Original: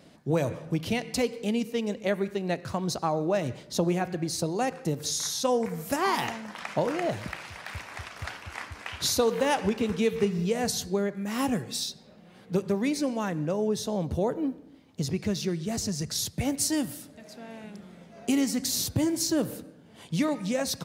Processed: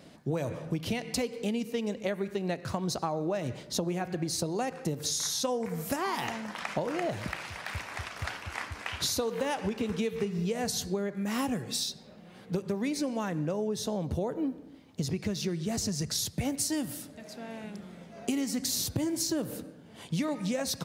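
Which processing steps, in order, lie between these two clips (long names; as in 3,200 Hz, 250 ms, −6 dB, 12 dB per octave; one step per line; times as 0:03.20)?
downward compressor, threshold −29 dBFS, peak gain reduction 9.5 dB
level +1.5 dB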